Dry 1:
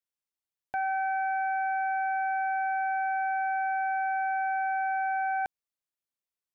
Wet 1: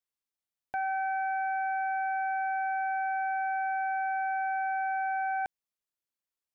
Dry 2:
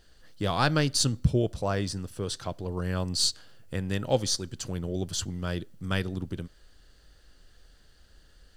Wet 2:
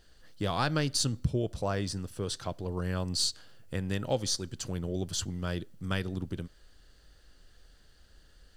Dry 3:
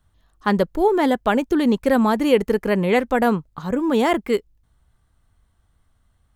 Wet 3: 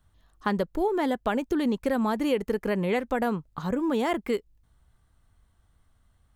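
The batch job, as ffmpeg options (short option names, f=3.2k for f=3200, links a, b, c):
-af "acompressor=threshold=-24dB:ratio=2.5,volume=-1.5dB"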